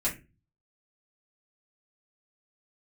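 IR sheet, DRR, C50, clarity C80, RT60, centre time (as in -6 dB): -8.0 dB, 11.5 dB, 18.5 dB, 0.30 s, 19 ms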